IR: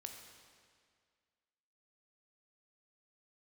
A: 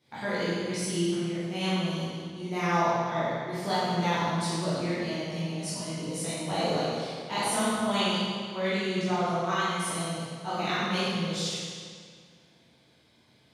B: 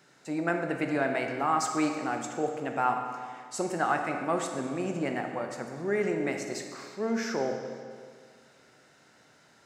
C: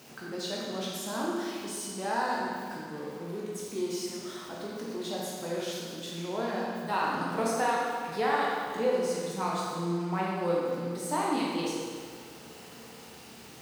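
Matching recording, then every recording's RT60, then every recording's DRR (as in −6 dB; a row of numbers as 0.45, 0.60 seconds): B; 2.0, 2.0, 2.0 seconds; −12.0, 3.5, −5.0 decibels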